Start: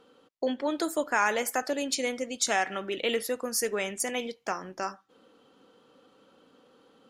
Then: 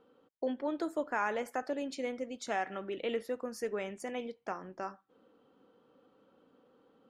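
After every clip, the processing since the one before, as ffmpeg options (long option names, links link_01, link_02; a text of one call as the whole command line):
ffmpeg -i in.wav -af "lowpass=frequency=1200:poles=1,volume=-4.5dB" out.wav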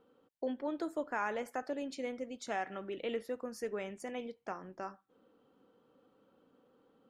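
ffmpeg -i in.wav -af "lowshelf=frequency=150:gain=4,volume=-3dB" out.wav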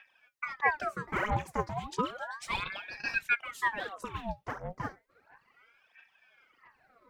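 ffmpeg -i in.wav -af "aphaser=in_gain=1:out_gain=1:delay=4.5:decay=0.76:speed=1.5:type=sinusoidal,aeval=exprs='val(0)*sin(2*PI*1200*n/s+1200*0.75/0.33*sin(2*PI*0.33*n/s))':channel_layout=same,volume=2.5dB" out.wav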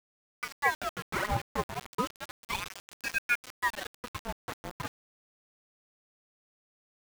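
ffmpeg -i in.wav -af "aeval=exprs='val(0)*gte(abs(val(0)),0.0237)':channel_layout=same" out.wav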